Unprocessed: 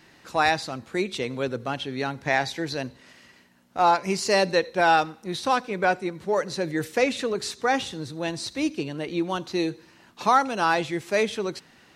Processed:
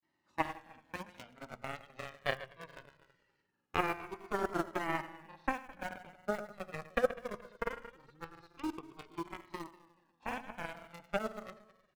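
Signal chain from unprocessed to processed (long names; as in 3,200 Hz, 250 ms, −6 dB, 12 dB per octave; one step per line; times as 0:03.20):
stylus tracing distortion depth 0.037 ms
camcorder AGC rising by 6.5 dB per second
high-pass filter 150 Hz 6 dB per octave
treble cut that deepens with the level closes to 630 Hz, closed at −20 dBFS
high-shelf EQ 2,400 Hz −11 dB
harmonic generator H 3 −9 dB, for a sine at −11.5 dBFS
in parallel at −8 dB: bit-depth reduction 6 bits, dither none
on the sum: repeating echo 107 ms, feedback 54%, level −14 dB
on a send at −19 dB: convolution reverb RT60 0.80 s, pre-delay 3 ms
on the sum: granular cloud, spray 29 ms, pitch spread up and down by 0 semitones
flanger whose copies keep moving one way falling 0.21 Hz
level +5.5 dB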